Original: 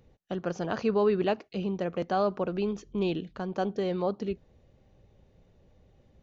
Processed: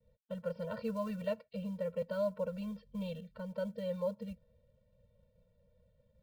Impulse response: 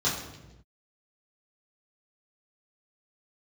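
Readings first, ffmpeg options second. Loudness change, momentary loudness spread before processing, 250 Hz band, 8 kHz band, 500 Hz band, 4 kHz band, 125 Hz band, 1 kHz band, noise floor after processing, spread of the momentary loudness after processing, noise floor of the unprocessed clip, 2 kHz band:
−9.0 dB, 9 LU, −9.0 dB, can't be measured, −8.5 dB, −12.0 dB, −7.5 dB, −15.5 dB, −74 dBFS, 8 LU, −64 dBFS, −11.0 dB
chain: -af "aresample=11025,aresample=44100,acrusher=bits=7:mode=log:mix=0:aa=0.000001,agate=range=-33dB:threshold=-58dB:ratio=3:detection=peak,equalizer=frequency=460:width=1.3:gain=6.5,afftfilt=real='re*eq(mod(floor(b*sr/1024/220),2),0)':imag='im*eq(mod(floor(b*sr/1024/220),2),0)':win_size=1024:overlap=0.75,volume=-8.5dB"

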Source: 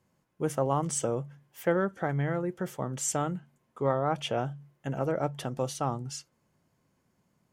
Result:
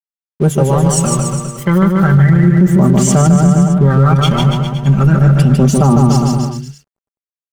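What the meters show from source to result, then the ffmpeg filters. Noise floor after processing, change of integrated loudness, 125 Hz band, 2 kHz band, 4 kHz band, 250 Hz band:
below −85 dBFS, +20.5 dB, +26.0 dB, +15.0 dB, +17.5 dB, +24.0 dB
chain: -af "equalizer=frequency=97:width_type=o:width=0.56:gain=-13.5,aecho=1:1:5.1:0.94,asubboost=boost=6.5:cutoff=220,aphaser=in_gain=1:out_gain=1:delay=1:decay=0.67:speed=0.33:type=sinusoidal,aeval=exprs='sgn(val(0))*max(abs(val(0))-0.00596,0)':channel_layout=same,aecho=1:1:150|285|406.5|515.8|614.3:0.631|0.398|0.251|0.158|0.1,alimiter=level_in=12.5dB:limit=-1dB:release=50:level=0:latency=1,volume=-1dB"

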